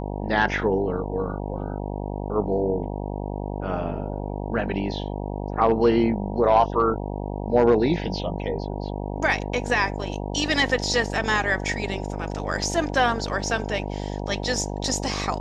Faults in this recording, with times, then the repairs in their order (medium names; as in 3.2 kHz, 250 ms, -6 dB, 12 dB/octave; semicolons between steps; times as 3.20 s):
buzz 50 Hz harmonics 19 -30 dBFS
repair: de-hum 50 Hz, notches 19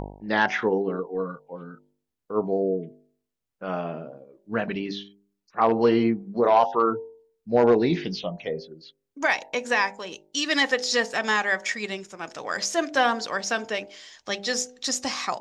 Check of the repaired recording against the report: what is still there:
nothing left